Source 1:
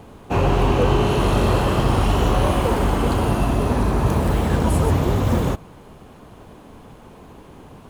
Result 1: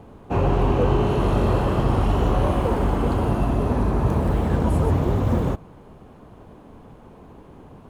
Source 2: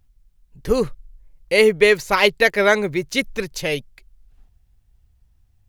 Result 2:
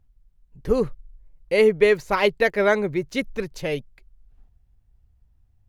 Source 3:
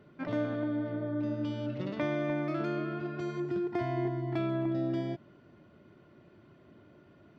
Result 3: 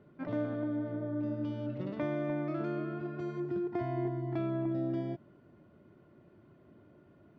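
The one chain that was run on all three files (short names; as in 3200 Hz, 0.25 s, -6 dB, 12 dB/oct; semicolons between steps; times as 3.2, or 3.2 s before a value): high shelf 2000 Hz -10.5 dB; gain -1.5 dB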